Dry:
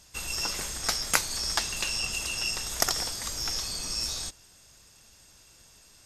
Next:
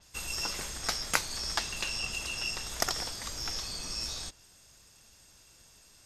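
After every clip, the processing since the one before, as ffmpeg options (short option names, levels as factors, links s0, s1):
-af "adynamicequalizer=threshold=0.00891:dfrequency=6000:dqfactor=0.7:tfrequency=6000:tqfactor=0.7:attack=5:release=100:ratio=0.375:range=3:mode=cutabove:tftype=highshelf,volume=0.75"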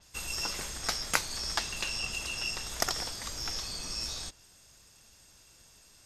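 -af anull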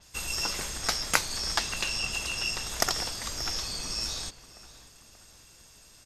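-filter_complex "[0:a]asplit=2[s0][s1];[s1]adelay=582,lowpass=f=3400:p=1,volume=0.15,asplit=2[s2][s3];[s3]adelay=582,lowpass=f=3400:p=1,volume=0.49,asplit=2[s4][s5];[s5]adelay=582,lowpass=f=3400:p=1,volume=0.49,asplit=2[s6][s7];[s7]adelay=582,lowpass=f=3400:p=1,volume=0.49[s8];[s0][s2][s4][s6][s8]amix=inputs=5:normalize=0,volume=1.5"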